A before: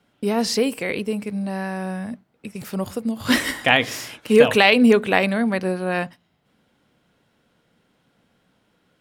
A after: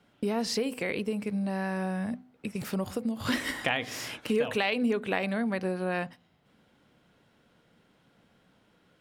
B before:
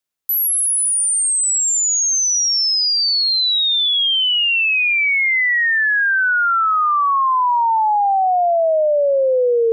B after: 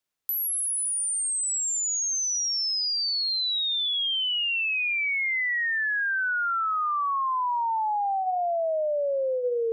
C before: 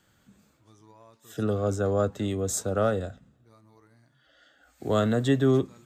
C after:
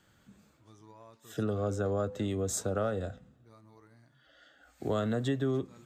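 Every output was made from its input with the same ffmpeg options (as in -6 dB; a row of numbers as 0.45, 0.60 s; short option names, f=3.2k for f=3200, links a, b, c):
-af "highshelf=f=6.5k:g=-4.5,bandreject=f=252.3:t=h:w=4,bandreject=f=504.6:t=h:w=4,bandreject=f=756.9:t=h:w=4,acompressor=threshold=-29dB:ratio=3"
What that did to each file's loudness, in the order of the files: -10.5, -10.5, -6.5 LU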